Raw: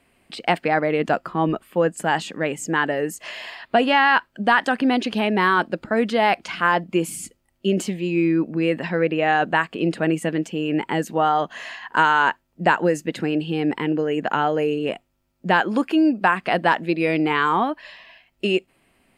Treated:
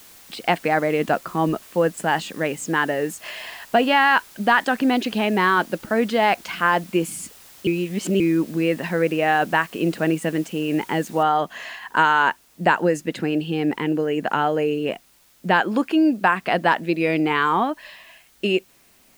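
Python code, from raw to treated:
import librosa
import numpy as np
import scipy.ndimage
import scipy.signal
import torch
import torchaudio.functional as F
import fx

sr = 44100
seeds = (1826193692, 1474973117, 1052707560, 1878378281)

y = fx.noise_floor_step(x, sr, seeds[0], at_s=11.23, before_db=-47, after_db=-57, tilt_db=0.0)
y = fx.edit(y, sr, fx.reverse_span(start_s=7.67, length_s=0.53), tone=tone)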